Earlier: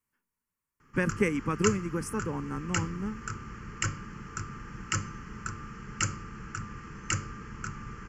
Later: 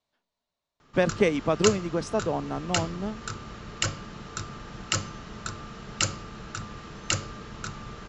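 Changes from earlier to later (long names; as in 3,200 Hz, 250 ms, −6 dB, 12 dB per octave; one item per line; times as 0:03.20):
speech: add low-pass filter 6,800 Hz 24 dB per octave
master: remove phaser with its sweep stopped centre 1,600 Hz, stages 4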